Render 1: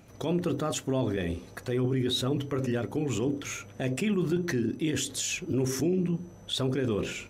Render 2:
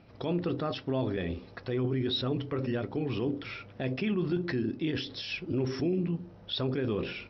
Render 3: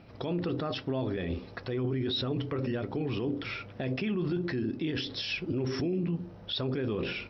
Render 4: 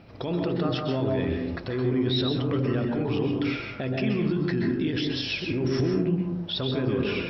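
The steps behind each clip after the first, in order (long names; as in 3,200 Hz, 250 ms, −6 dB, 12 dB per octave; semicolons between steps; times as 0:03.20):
Chebyshev low-pass filter 5,500 Hz, order 10; level −1.5 dB
brickwall limiter −27 dBFS, peak gain reduction 7 dB; level +3.5 dB
convolution reverb RT60 0.70 s, pre-delay 117 ms, DRR 2 dB; level +3 dB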